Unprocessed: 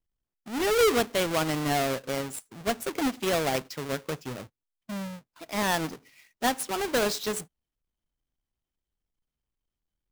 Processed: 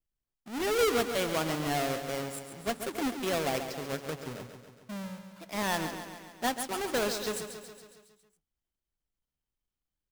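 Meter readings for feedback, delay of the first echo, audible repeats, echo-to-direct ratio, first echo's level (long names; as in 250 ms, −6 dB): 60%, 138 ms, 6, −7.0 dB, −9.0 dB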